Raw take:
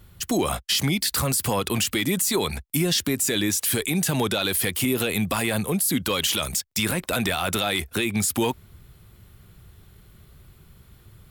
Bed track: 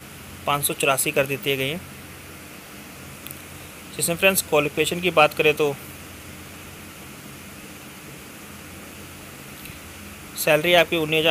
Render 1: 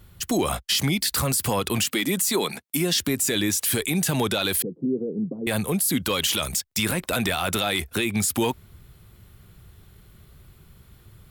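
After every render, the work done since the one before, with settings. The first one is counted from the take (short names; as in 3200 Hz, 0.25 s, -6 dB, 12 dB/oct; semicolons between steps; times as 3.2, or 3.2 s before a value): 1.83–3 HPF 170 Hz 24 dB/oct; 4.62–5.47 elliptic band-pass 150–470 Hz, stop band 70 dB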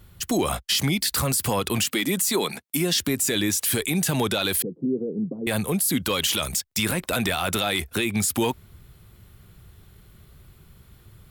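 nothing audible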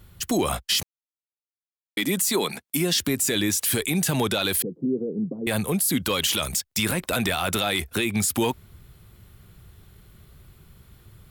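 0.83–1.97 mute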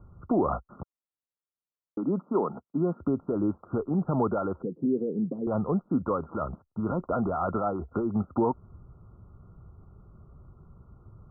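Chebyshev low-pass 1400 Hz, order 10; dynamic EQ 100 Hz, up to -4 dB, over -37 dBFS, Q 0.81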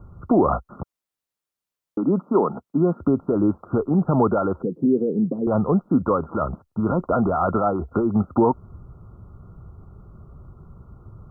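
gain +7.5 dB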